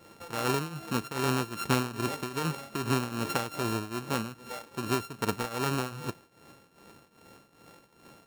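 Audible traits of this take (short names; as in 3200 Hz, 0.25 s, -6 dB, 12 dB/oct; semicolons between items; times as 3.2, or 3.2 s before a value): a buzz of ramps at a fixed pitch in blocks of 32 samples; tremolo triangle 2.5 Hz, depth 85%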